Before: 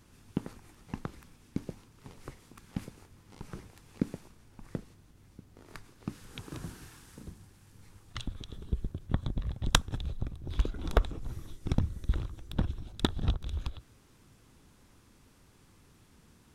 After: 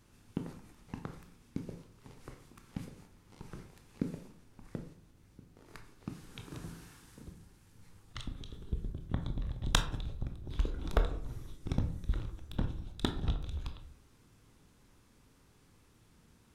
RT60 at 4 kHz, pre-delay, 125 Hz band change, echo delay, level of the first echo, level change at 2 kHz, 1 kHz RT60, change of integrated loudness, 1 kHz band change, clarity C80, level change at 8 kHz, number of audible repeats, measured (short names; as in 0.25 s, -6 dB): 0.30 s, 17 ms, -3.5 dB, none, none, -3.5 dB, 0.55 s, -3.5 dB, -3.5 dB, 14.0 dB, -4.0 dB, none